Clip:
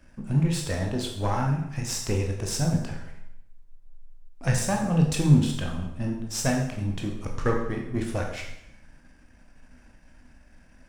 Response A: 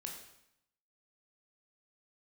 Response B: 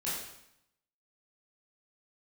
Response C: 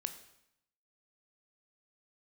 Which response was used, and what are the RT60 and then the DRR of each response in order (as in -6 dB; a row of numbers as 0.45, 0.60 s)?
A; 0.75, 0.75, 0.75 s; 0.5, -9.0, 8.5 dB